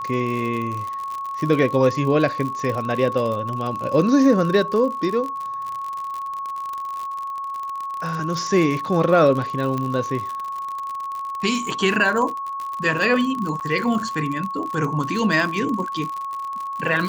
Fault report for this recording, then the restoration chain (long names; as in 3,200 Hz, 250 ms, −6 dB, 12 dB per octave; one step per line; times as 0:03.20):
surface crackle 59 per second −26 dBFS
whistle 1,100 Hz −26 dBFS
0:09.78: click −14 dBFS
0:13.60–0:13.61: drop-out 8.9 ms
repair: click removal
notch filter 1,100 Hz, Q 30
repair the gap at 0:13.60, 8.9 ms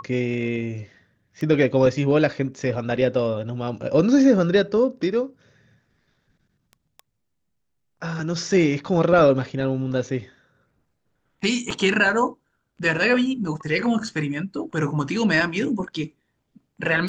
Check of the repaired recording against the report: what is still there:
none of them is left